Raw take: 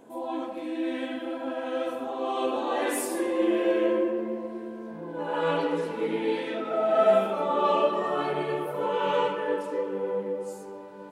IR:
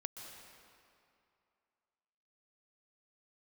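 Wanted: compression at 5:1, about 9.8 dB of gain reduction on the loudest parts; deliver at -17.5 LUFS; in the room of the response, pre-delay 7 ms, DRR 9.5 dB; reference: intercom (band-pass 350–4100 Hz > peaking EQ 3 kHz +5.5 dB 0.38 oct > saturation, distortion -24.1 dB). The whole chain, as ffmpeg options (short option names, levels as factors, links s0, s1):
-filter_complex "[0:a]acompressor=threshold=0.0447:ratio=5,asplit=2[s0][s1];[1:a]atrim=start_sample=2205,adelay=7[s2];[s1][s2]afir=irnorm=-1:irlink=0,volume=0.422[s3];[s0][s3]amix=inputs=2:normalize=0,highpass=350,lowpass=4100,equalizer=f=3000:t=o:w=0.38:g=5.5,asoftclip=threshold=0.0891,volume=6.31"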